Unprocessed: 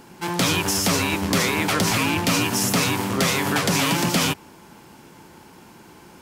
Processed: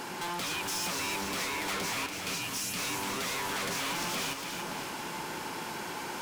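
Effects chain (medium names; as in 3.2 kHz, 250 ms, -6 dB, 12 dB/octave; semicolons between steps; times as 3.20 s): 2.06–2.79 s: amplifier tone stack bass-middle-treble 6-0-2; compression 5:1, threshold -37 dBFS, peak gain reduction 18 dB; overdrive pedal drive 17 dB, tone 7.4 kHz, clips at -22 dBFS; overload inside the chain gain 32.5 dB; two-band feedback delay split 1.2 kHz, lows 512 ms, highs 287 ms, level -5.5 dB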